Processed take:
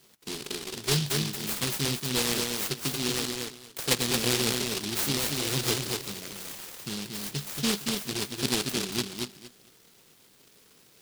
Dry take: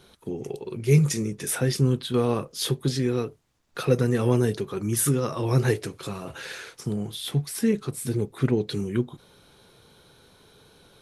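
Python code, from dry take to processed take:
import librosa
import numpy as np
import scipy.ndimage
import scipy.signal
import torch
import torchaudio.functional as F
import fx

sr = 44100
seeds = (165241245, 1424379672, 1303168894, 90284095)

y = scipy.signal.sosfilt(scipy.signal.butter(2, 210.0, 'highpass', fs=sr, output='sos'), x)
y = fx.echo_feedback(y, sr, ms=231, feedback_pct=20, wet_db=-4.0)
y = fx.noise_mod_delay(y, sr, seeds[0], noise_hz=3800.0, depth_ms=0.44)
y = y * 10.0 ** (-3.5 / 20.0)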